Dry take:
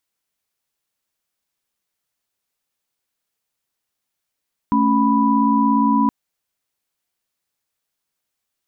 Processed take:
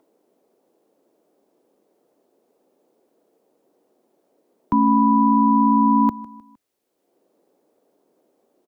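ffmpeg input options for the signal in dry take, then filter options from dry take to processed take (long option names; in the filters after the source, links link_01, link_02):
-f lavfi -i "aevalsrc='0.133*(sin(2*PI*220*t)+sin(2*PI*277.18*t)+sin(2*PI*987.77*t))':duration=1.37:sample_rate=44100"
-filter_complex "[0:a]acrossover=split=110|300|500[link_01][link_02][link_03][link_04];[link_03]acompressor=mode=upward:threshold=-36dB:ratio=2.5[link_05];[link_01][link_02][link_05][link_04]amix=inputs=4:normalize=0,aecho=1:1:154|308|462:0.106|0.0455|0.0196"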